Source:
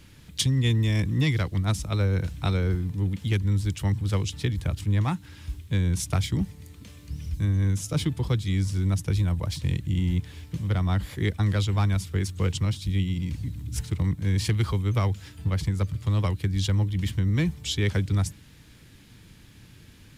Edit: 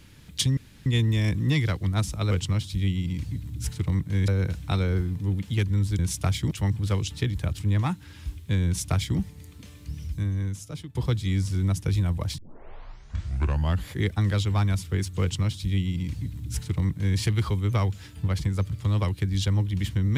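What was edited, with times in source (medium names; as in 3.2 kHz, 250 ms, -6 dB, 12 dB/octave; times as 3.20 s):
0.57 s: insert room tone 0.29 s
5.88–6.40 s: copy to 3.73 s
7.13–8.17 s: fade out, to -18 dB
9.60 s: tape start 1.48 s
12.43–14.40 s: copy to 2.02 s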